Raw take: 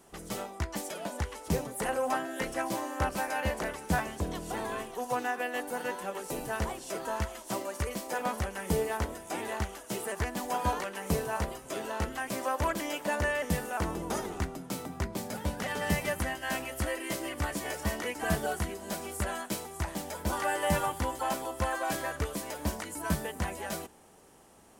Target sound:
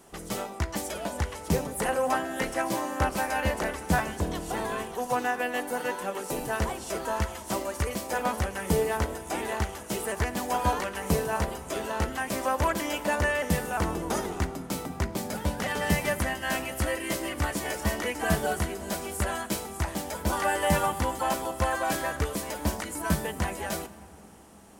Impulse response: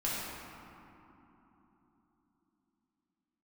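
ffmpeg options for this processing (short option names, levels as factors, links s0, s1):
-filter_complex "[0:a]asplit=2[s0][s1];[1:a]atrim=start_sample=2205,adelay=57[s2];[s1][s2]afir=irnorm=-1:irlink=0,volume=0.075[s3];[s0][s3]amix=inputs=2:normalize=0,volume=1.58"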